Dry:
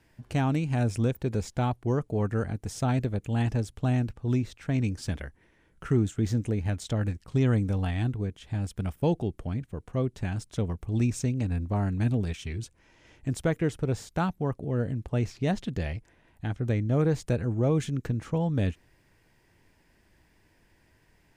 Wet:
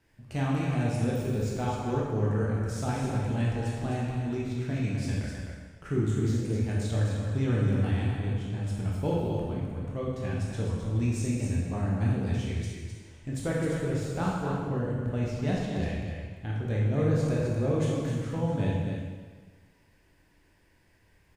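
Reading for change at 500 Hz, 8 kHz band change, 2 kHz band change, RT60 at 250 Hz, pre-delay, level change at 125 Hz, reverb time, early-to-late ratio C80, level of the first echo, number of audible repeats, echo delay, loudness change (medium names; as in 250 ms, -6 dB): 0.0 dB, -0.5 dB, 0.0 dB, 1.5 s, 8 ms, -0.5 dB, 1.4 s, 0.5 dB, -6.0 dB, 1, 258 ms, -0.5 dB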